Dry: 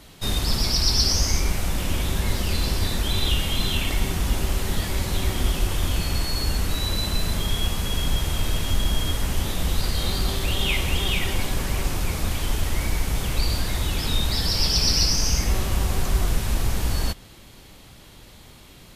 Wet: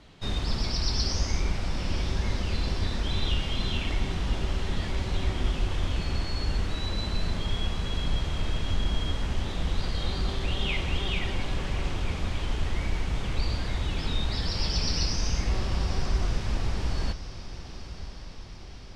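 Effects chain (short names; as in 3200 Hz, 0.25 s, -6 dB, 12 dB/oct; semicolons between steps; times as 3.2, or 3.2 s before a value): air absorption 120 m; diffused feedback echo 1.004 s, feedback 60%, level -13 dB; gain -4.5 dB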